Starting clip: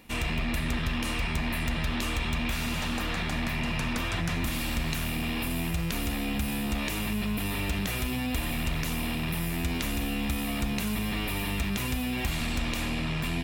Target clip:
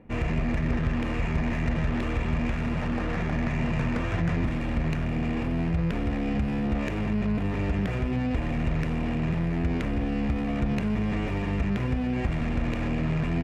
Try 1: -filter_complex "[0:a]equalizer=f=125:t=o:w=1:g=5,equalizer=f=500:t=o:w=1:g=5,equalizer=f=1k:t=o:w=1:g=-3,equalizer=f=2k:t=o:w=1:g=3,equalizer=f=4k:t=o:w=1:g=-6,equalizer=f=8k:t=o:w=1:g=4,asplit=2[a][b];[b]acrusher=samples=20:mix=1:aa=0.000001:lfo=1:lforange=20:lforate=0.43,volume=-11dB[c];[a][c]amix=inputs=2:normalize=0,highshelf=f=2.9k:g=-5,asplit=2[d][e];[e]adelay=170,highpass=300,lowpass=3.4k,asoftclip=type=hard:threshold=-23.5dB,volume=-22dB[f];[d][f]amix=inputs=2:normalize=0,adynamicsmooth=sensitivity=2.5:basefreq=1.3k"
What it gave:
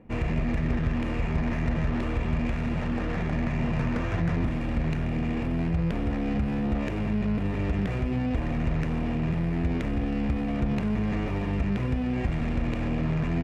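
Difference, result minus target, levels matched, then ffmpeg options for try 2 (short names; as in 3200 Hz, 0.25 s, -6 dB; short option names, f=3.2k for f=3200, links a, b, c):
decimation with a swept rate: distortion +7 dB
-filter_complex "[0:a]equalizer=f=125:t=o:w=1:g=5,equalizer=f=500:t=o:w=1:g=5,equalizer=f=1k:t=o:w=1:g=-3,equalizer=f=2k:t=o:w=1:g=3,equalizer=f=4k:t=o:w=1:g=-6,equalizer=f=8k:t=o:w=1:g=4,asplit=2[a][b];[b]acrusher=samples=4:mix=1:aa=0.000001:lfo=1:lforange=4:lforate=0.43,volume=-11dB[c];[a][c]amix=inputs=2:normalize=0,highshelf=f=2.9k:g=-5,asplit=2[d][e];[e]adelay=170,highpass=300,lowpass=3.4k,asoftclip=type=hard:threshold=-23.5dB,volume=-22dB[f];[d][f]amix=inputs=2:normalize=0,adynamicsmooth=sensitivity=2.5:basefreq=1.3k"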